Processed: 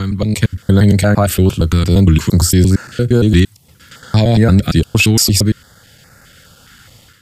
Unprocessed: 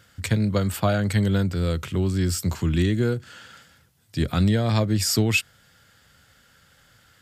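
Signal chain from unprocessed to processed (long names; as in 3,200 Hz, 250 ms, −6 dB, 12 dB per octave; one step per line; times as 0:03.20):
slices reordered back to front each 115 ms, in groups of 6
automatic gain control gain up to 10 dB
boost into a limiter +6.5 dB
notch on a step sequencer 4.8 Hz 570–3,200 Hz
level −1 dB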